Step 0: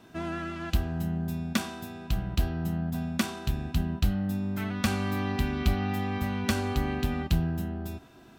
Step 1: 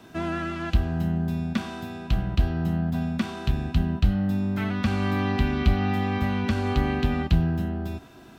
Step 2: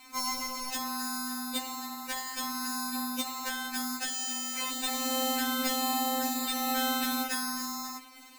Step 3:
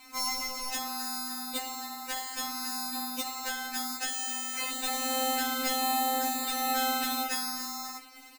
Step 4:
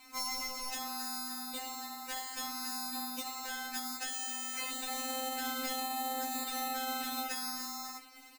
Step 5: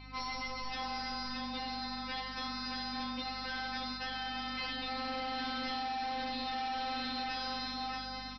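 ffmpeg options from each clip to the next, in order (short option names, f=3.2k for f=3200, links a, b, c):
-filter_complex "[0:a]acrossover=split=220[a][b];[b]alimiter=limit=-22dB:level=0:latency=1:release=213[c];[a][c]amix=inputs=2:normalize=0,acrossover=split=4700[d][e];[e]acompressor=threshold=-59dB:ratio=4:attack=1:release=60[f];[d][f]amix=inputs=2:normalize=0,volume=5dB"
-af "acrusher=samples=26:mix=1:aa=0.000001,tiltshelf=f=970:g=-9.5,afftfilt=real='re*3.46*eq(mod(b,12),0)':imag='im*3.46*eq(mod(b,12),0)':win_size=2048:overlap=0.75"
-filter_complex "[0:a]asplit=2[a][b];[b]adelay=14,volume=-6dB[c];[a][c]amix=inputs=2:normalize=0"
-af "alimiter=limit=-22.5dB:level=0:latency=1:release=62,volume=-4dB"
-af "aeval=exprs='val(0)+0.002*(sin(2*PI*50*n/s)+sin(2*PI*2*50*n/s)/2+sin(2*PI*3*50*n/s)/3+sin(2*PI*4*50*n/s)/4+sin(2*PI*5*50*n/s)/5)':c=same,aecho=1:1:625|1250|1875|2500:0.501|0.185|0.0686|0.0254,aresample=11025,asoftclip=type=hard:threshold=-39dB,aresample=44100,volume=4dB"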